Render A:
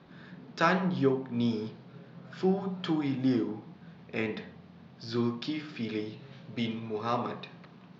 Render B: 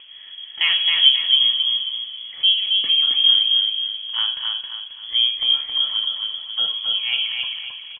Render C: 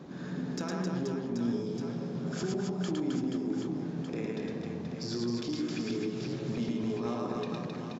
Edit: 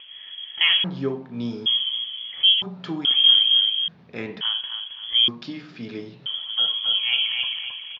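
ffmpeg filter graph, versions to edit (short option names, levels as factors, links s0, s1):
-filter_complex "[0:a]asplit=4[s0][s1][s2][s3];[1:a]asplit=5[s4][s5][s6][s7][s8];[s4]atrim=end=0.842[s9];[s0]atrim=start=0.838:end=1.662[s10];[s5]atrim=start=1.658:end=2.622[s11];[s1]atrim=start=2.618:end=3.052[s12];[s6]atrim=start=3.048:end=3.882[s13];[s2]atrim=start=3.878:end=4.412[s14];[s7]atrim=start=4.408:end=5.282[s15];[s3]atrim=start=5.278:end=6.262[s16];[s8]atrim=start=6.258[s17];[s9][s10]acrossfade=d=0.004:c1=hsin:c2=hsin[s18];[s18][s11]acrossfade=d=0.004:c1=hsin:c2=hsin[s19];[s19][s12]acrossfade=d=0.004:c1=hsin:c2=hsin[s20];[s20][s13]acrossfade=d=0.004:c1=hsin:c2=hsin[s21];[s21][s14]acrossfade=d=0.004:c1=hsin:c2=hsin[s22];[s22][s15]acrossfade=d=0.004:c1=hsin:c2=hsin[s23];[s23][s16]acrossfade=d=0.004:c1=hsin:c2=hsin[s24];[s24][s17]acrossfade=d=0.004:c1=hsin:c2=hsin"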